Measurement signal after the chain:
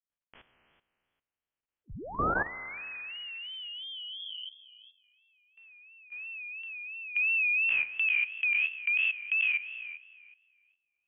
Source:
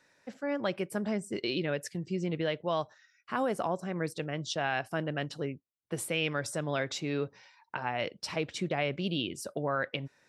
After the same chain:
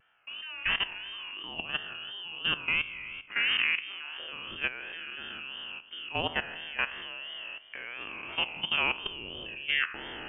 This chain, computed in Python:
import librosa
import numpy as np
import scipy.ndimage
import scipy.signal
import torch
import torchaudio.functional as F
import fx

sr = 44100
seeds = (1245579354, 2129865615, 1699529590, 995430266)

y = fx.spec_trails(x, sr, decay_s=1.68)
y = fx.hum_notches(y, sr, base_hz=50, count=2)
y = fx.freq_invert(y, sr, carrier_hz=3200)
y = fx.level_steps(y, sr, step_db=14)
y = fx.vibrato(y, sr, rate_hz=2.9, depth_cents=93.0)
y = y * librosa.db_to_amplitude(1.0)